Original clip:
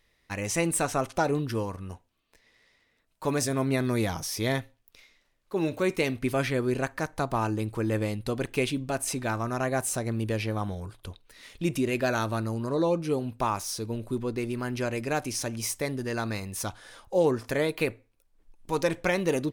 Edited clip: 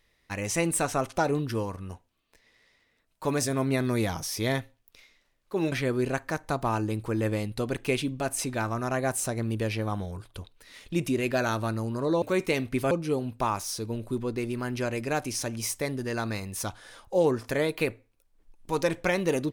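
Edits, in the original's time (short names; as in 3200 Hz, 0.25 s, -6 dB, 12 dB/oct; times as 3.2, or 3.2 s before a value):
5.72–6.41 move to 12.91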